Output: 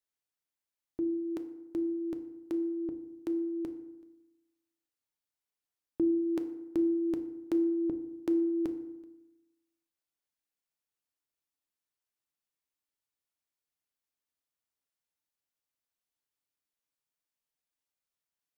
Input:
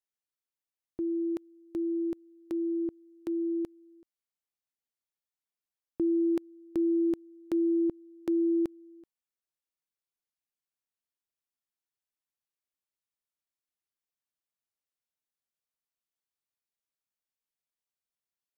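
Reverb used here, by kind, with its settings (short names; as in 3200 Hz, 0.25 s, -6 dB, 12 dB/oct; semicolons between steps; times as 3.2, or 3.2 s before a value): FDN reverb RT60 0.98 s, low-frequency decay 1.1×, high-frequency decay 0.55×, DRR 7.5 dB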